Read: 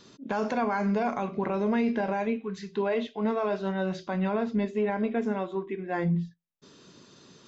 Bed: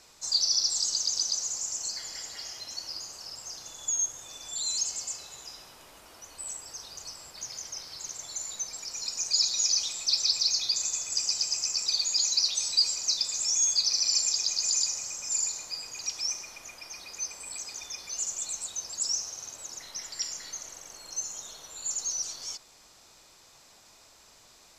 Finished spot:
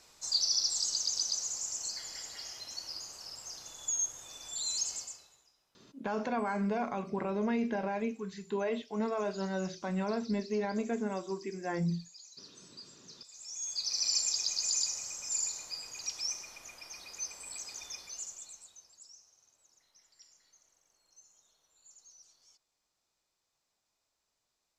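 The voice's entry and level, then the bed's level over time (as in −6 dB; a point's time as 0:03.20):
5.75 s, −5.5 dB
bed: 0:04.97 −4 dB
0:05.54 −27 dB
0:13.07 −27 dB
0:14.04 −4.5 dB
0:17.94 −4.5 dB
0:19.12 −26.5 dB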